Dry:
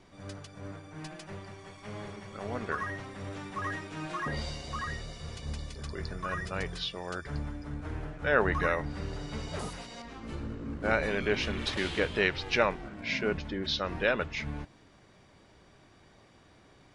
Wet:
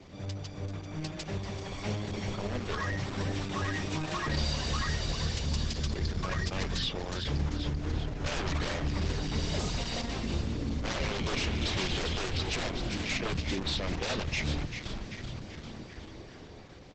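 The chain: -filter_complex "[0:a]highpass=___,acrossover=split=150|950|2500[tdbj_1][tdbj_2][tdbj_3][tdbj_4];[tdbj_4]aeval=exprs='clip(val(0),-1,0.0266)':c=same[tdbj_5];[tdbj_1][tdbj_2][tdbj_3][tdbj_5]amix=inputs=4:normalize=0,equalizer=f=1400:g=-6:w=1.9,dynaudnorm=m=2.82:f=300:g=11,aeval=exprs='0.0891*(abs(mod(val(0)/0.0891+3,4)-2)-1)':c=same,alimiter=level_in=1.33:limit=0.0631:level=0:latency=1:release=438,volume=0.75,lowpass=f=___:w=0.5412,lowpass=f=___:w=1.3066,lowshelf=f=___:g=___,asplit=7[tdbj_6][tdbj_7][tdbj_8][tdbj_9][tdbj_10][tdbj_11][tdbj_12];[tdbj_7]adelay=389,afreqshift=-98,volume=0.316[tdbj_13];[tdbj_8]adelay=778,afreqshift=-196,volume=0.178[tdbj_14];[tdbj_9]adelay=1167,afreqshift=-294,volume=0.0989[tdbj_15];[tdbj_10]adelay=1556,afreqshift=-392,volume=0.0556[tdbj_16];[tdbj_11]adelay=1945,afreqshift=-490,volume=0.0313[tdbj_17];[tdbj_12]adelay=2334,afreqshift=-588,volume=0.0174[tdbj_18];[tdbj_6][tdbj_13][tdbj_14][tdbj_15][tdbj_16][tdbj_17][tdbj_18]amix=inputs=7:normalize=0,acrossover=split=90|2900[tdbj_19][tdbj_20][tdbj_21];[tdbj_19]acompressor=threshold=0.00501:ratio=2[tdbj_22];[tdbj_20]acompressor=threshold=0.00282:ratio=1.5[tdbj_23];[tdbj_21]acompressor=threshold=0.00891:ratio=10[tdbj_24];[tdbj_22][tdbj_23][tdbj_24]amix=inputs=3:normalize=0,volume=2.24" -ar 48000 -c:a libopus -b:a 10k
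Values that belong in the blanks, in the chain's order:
45, 7000, 7000, 78, 11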